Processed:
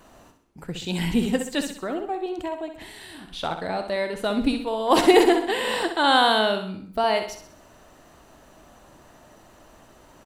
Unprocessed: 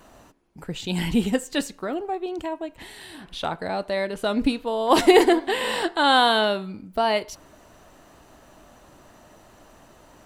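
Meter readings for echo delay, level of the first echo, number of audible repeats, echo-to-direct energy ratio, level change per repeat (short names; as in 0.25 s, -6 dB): 64 ms, -8.0 dB, 4, -7.0 dB, -7.0 dB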